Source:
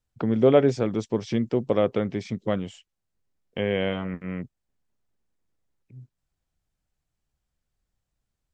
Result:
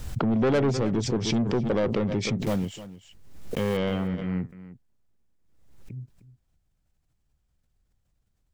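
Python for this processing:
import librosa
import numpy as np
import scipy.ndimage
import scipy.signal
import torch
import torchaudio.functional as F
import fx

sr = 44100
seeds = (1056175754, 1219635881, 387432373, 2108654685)

y = fx.block_float(x, sr, bits=5, at=(2.42, 3.78))
y = fx.low_shelf(y, sr, hz=280.0, db=7.5)
y = 10.0 ** (-19.5 / 20.0) * np.tanh(y / 10.0 ** (-19.5 / 20.0))
y = y + 10.0 ** (-15.5 / 20.0) * np.pad(y, (int(307 * sr / 1000.0), 0))[:len(y)]
y = fx.pre_swell(y, sr, db_per_s=53.0)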